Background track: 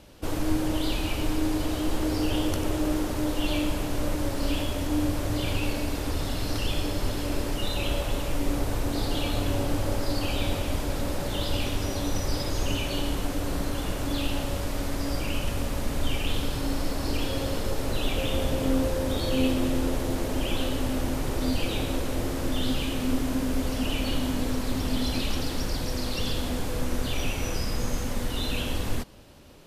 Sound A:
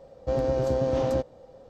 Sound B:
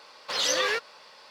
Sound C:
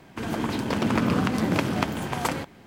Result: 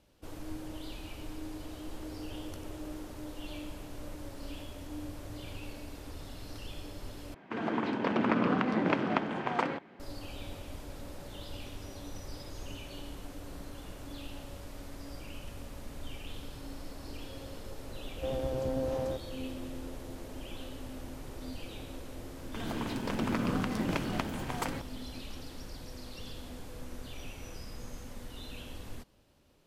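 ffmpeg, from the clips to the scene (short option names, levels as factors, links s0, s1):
-filter_complex "[3:a]asplit=2[s0][s1];[0:a]volume=0.168[s2];[s0]highpass=220,lowpass=2500[s3];[s2]asplit=2[s4][s5];[s4]atrim=end=7.344[s6];[s3]atrim=end=2.66,asetpts=PTS-STARTPTS,volume=0.75[s7];[s5]atrim=start=9.996[s8];[1:a]atrim=end=1.69,asetpts=PTS-STARTPTS,volume=0.355,afade=t=in:d=0.004:c=hsin,afade=t=out:st=1.686:d=0.004:c=hsin,adelay=17950[s9];[s1]atrim=end=2.66,asetpts=PTS-STARTPTS,volume=0.376,afade=t=in:d=0.004:c=hsin,afade=t=out:st=2.656:d=0.004:c=hsin,adelay=22370[s10];[s6][s7]acrossfade=d=0.004:c1=hsin:c2=hsin[s11];[s11][s8]acrossfade=d=0.004:c1=hsin:c2=hsin[s12];[s12][s9][s10]amix=inputs=3:normalize=0"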